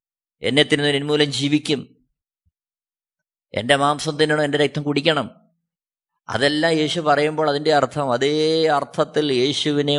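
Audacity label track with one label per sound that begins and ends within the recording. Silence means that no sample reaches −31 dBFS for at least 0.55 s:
3.540000	5.280000	sound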